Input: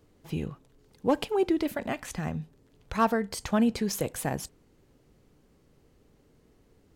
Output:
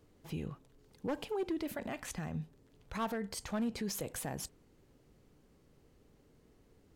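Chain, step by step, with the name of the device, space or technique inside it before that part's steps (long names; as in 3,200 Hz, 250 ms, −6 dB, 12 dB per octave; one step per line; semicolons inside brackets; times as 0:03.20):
clipper into limiter (hard clipping −19 dBFS, distortion −17 dB; brickwall limiter −26.5 dBFS, peak gain reduction 7.5 dB)
level −3 dB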